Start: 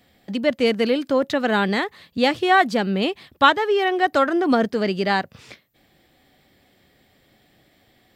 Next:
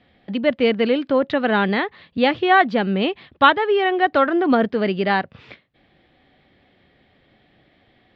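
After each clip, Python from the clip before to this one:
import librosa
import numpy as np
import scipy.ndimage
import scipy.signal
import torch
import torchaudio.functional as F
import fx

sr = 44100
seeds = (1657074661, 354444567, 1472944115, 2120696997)

y = scipy.signal.sosfilt(scipy.signal.butter(4, 3600.0, 'lowpass', fs=sr, output='sos'), x)
y = F.gain(torch.from_numpy(y), 1.5).numpy()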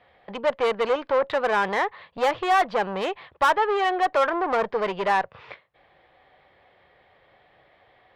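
y = fx.tube_stage(x, sr, drive_db=20.0, bias=0.3)
y = fx.graphic_eq(y, sr, hz=(250, 500, 1000, 2000), db=(-11, 8, 12, 4))
y = F.gain(torch.from_numpy(y), -5.0).numpy()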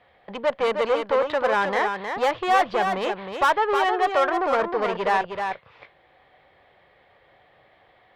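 y = x + 10.0 ** (-6.0 / 20.0) * np.pad(x, (int(313 * sr / 1000.0), 0))[:len(x)]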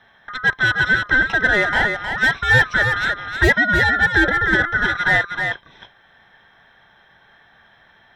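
y = fx.band_swap(x, sr, width_hz=1000)
y = F.gain(torch.from_numpy(y), 5.0).numpy()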